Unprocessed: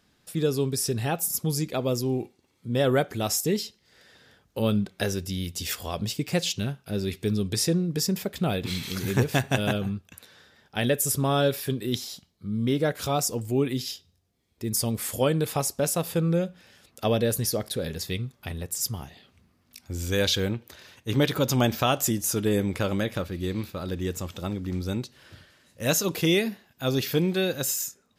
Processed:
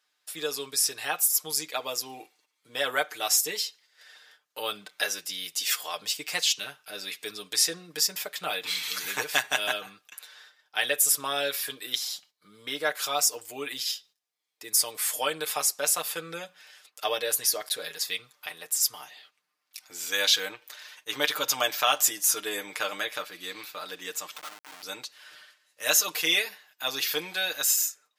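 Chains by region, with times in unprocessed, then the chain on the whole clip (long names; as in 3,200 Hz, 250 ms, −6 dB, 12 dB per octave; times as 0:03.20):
0:24.36–0:24.83: loudspeaker in its box 440–9,400 Hz, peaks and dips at 490 Hz −8 dB, 1,300 Hz +8 dB, 2,400 Hz +4 dB, 5,300 Hz +6 dB + comparator with hysteresis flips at −38 dBFS
whole clip: noise gate −56 dBFS, range −10 dB; high-pass filter 1,000 Hz 12 dB per octave; comb filter 6.6 ms, depth 73%; level +2.5 dB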